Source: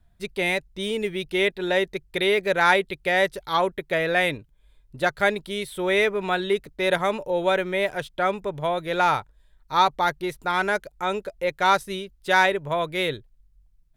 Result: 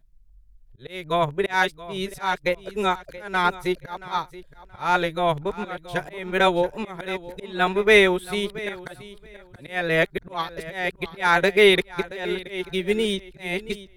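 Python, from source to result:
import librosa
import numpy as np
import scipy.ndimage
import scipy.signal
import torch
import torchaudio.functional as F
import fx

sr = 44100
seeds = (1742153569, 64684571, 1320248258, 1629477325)

y = x[::-1].copy()
y = fx.auto_swell(y, sr, attack_ms=269.0)
y = fx.low_shelf(y, sr, hz=100.0, db=7.0)
y = fx.echo_feedback(y, sr, ms=677, feedback_pct=20, wet_db=-12.5)
y = fx.dynamic_eq(y, sr, hz=580.0, q=6.2, threshold_db=-42.0, ratio=4.0, max_db=-7)
y = fx.upward_expand(y, sr, threshold_db=-35.0, expansion=1.5)
y = F.gain(torch.from_numpy(y), 7.0).numpy()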